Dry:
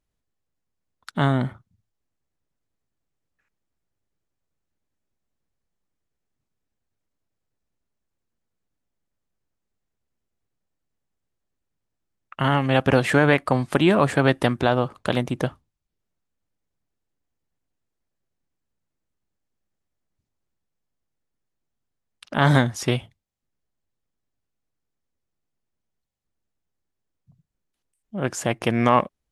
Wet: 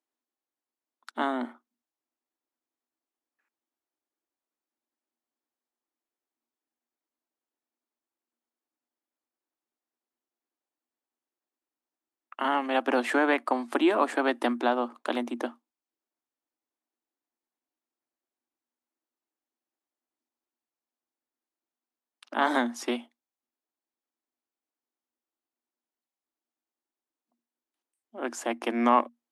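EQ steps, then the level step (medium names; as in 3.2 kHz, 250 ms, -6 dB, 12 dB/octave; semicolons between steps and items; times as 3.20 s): rippled Chebyshev high-pass 230 Hz, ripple 6 dB; -2.0 dB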